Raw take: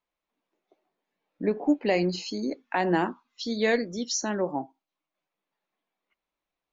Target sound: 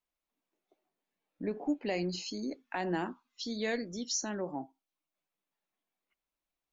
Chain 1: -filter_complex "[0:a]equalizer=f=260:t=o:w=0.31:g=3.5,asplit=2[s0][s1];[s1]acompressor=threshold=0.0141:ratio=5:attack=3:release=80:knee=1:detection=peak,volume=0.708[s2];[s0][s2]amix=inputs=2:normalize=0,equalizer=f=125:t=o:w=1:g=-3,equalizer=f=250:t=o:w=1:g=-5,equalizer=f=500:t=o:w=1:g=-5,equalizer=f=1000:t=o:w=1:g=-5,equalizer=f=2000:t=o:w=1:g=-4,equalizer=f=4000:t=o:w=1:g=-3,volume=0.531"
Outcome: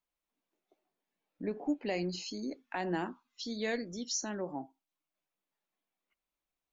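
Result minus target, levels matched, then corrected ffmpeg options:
compression: peak gain reduction +6 dB
-filter_complex "[0:a]equalizer=f=260:t=o:w=0.31:g=3.5,asplit=2[s0][s1];[s1]acompressor=threshold=0.0335:ratio=5:attack=3:release=80:knee=1:detection=peak,volume=0.708[s2];[s0][s2]amix=inputs=2:normalize=0,equalizer=f=125:t=o:w=1:g=-3,equalizer=f=250:t=o:w=1:g=-5,equalizer=f=500:t=o:w=1:g=-5,equalizer=f=1000:t=o:w=1:g=-5,equalizer=f=2000:t=o:w=1:g=-4,equalizer=f=4000:t=o:w=1:g=-3,volume=0.531"

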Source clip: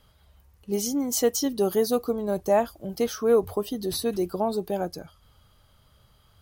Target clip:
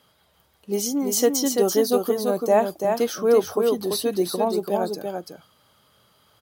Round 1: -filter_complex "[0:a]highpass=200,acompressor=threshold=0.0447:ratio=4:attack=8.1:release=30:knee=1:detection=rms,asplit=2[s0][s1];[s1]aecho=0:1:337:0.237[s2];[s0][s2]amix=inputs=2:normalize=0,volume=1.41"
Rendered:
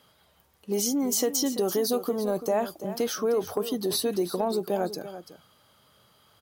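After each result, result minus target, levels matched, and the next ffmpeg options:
compression: peak gain reduction +9.5 dB; echo-to-direct -8 dB
-filter_complex "[0:a]highpass=200,asplit=2[s0][s1];[s1]aecho=0:1:337:0.237[s2];[s0][s2]amix=inputs=2:normalize=0,volume=1.41"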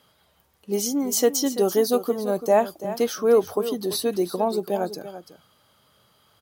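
echo-to-direct -8 dB
-filter_complex "[0:a]highpass=200,asplit=2[s0][s1];[s1]aecho=0:1:337:0.596[s2];[s0][s2]amix=inputs=2:normalize=0,volume=1.41"

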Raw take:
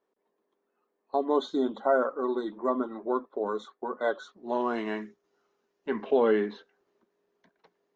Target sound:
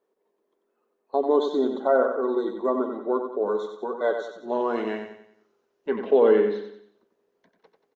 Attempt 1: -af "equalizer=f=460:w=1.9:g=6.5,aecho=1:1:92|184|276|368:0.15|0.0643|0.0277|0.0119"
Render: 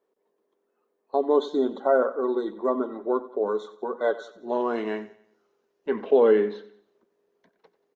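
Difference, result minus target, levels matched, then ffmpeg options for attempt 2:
echo-to-direct -9.5 dB
-af "equalizer=f=460:w=1.9:g=6.5,aecho=1:1:92|184|276|368|460:0.447|0.192|0.0826|0.0355|0.0153"

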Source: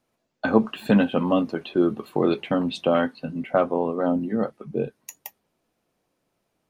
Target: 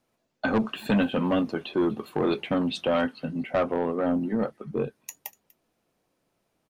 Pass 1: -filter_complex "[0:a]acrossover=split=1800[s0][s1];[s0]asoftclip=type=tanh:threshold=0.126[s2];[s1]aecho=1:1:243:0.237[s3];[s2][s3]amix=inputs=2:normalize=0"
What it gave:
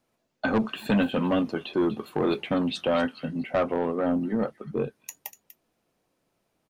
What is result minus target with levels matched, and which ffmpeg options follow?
echo-to-direct +9 dB
-filter_complex "[0:a]acrossover=split=1800[s0][s1];[s0]asoftclip=type=tanh:threshold=0.126[s2];[s1]aecho=1:1:243:0.0841[s3];[s2][s3]amix=inputs=2:normalize=0"

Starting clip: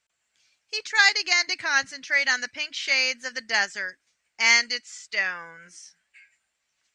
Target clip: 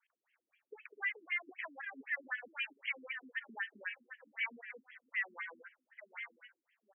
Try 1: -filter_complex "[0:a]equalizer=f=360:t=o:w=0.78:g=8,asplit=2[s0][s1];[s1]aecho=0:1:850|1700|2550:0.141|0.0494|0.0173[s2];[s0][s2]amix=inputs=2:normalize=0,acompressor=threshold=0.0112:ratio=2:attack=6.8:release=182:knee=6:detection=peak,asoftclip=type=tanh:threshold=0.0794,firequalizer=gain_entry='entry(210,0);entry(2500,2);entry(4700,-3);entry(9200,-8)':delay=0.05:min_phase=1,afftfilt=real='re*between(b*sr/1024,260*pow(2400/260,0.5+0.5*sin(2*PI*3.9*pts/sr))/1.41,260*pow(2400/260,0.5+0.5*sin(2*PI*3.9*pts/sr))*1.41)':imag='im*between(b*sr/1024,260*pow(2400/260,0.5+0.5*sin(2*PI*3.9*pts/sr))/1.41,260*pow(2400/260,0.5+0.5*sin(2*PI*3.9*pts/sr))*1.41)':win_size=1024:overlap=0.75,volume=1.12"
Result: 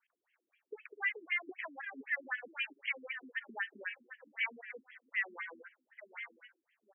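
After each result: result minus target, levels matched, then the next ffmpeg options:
saturation: distortion -10 dB; 500 Hz band +3.0 dB
-filter_complex "[0:a]equalizer=f=360:t=o:w=0.78:g=8,asplit=2[s0][s1];[s1]aecho=0:1:850|1700|2550:0.141|0.0494|0.0173[s2];[s0][s2]amix=inputs=2:normalize=0,acompressor=threshold=0.0112:ratio=2:attack=6.8:release=182:knee=6:detection=peak,asoftclip=type=tanh:threshold=0.0335,firequalizer=gain_entry='entry(210,0);entry(2500,2);entry(4700,-3);entry(9200,-8)':delay=0.05:min_phase=1,afftfilt=real='re*between(b*sr/1024,260*pow(2400/260,0.5+0.5*sin(2*PI*3.9*pts/sr))/1.41,260*pow(2400/260,0.5+0.5*sin(2*PI*3.9*pts/sr))*1.41)':imag='im*between(b*sr/1024,260*pow(2400/260,0.5+0.5*sin(2*PI*3.9*pts/sr))/1.41,260*pow(2400/260,0.5+0.5*sin(2*PI*3.9*pts/sr))*1.41)':win_size=1024:overlap=0.75,volume=1.12"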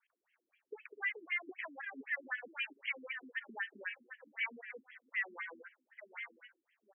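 500 Hz band +3.5 dB
-filter_complex "[0:a]asplit=2[s0][s1];[s1]aecho=0:1:850|1700|2550:0.141|0.0494|0.0173[s2];[s0][s2]amix=inputs=2:normalize=0,acompressor=threshold=0.0112:ratio=2:attack=6.8:release=182:knee=6:detection=peak,asoftclip=type=tanh:threshold=0.0335,firequalizer=gain_entry='entry(210,0);entry(2500,2);entry(4700,-3);entry(9200,-8)':delay=0.05:min_phase=1,afftfilt=real='re*between(b*sr/1024,260*pow(2400/260,0.5+0.5*sin(2*PI*3.9*pts/sr))/1.41,260*pow(2400/260,0.5+0.5*sin(2*PI*3.9*pts/sr))*1.41)':imag='im*between(b*sr/1024,260*pow(2400/260,0.5+0.5*sin(2*PI*3.9*pts/sr))/1.41,260*pow(2400/260,0.5+0.5*sin(2*PI*3.9*pts/sr))*1.41)':win_size=1024:overlap=0.75,volume=1.12"

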